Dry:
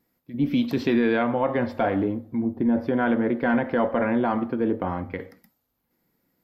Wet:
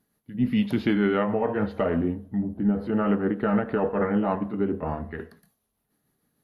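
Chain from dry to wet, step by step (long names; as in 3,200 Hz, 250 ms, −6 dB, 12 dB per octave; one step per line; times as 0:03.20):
pitch shift by two crossfaded delay taps −2.5 semitones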